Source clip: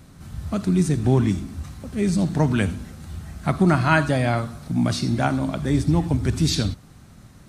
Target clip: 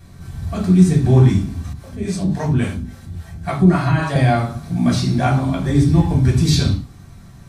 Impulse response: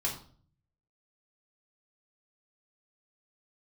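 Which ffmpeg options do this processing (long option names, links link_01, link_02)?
-filter_complex "[1:a]atrim=start_sample=2205,afade=type=out:start_time=0.2:duration=0.01,atrim=end_sample=9261[link_01];[0:a][link_01]afir=irnorm=-1:irlink=0,asettb=1/sr,asplit=3[link_02][link_03][link_04];[link_02]atrim=end=1.734[link_05];[link_03]atrim=start=1.73:end=4.16,asetpts=PTS-STARTPTS,afade=type=in:duration=0.004:curve=qsin,afade=type=out:start_time=2.426:duration=0.004:curve=qsin,acrossover=split=470[link_06][link_07];[link_06]aeval=exprs='val(0)*(1-0.7/2+0.7/2*cos(2*PI*3.6*n/s))':channel_layout=same[link_08];[link_07]aeval=exprs='val(0)*(1-0.7/2-0.7/2*cos(2*PI*3.6*n/s))':channel_layout=same[link_09];[link_08][link_09]amix=inputs=2:normalize=0[link_10];[link_04]atrim=start=4.156[link_11];[link_05][link_10]acrossfade=duration=0.004:curve1=hsin:curve2=qsin[link_12];[link_12][link_11]acrossfade=duration=0.004:curve1=qsin:curve2=hsin,volume=-1dB"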